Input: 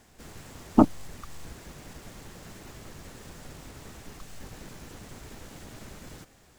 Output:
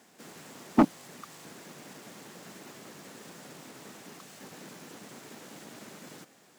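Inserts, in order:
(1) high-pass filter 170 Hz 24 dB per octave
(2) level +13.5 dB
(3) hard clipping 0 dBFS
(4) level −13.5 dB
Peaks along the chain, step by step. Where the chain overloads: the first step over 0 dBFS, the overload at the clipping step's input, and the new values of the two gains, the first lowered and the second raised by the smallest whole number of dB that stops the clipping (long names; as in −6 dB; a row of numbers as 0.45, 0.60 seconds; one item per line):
−5.0, +8.5, 0.0, −13.5 dBFS
step 2, 8.5 dB
step 2 +4.5 dB, step 4 −4.5 dB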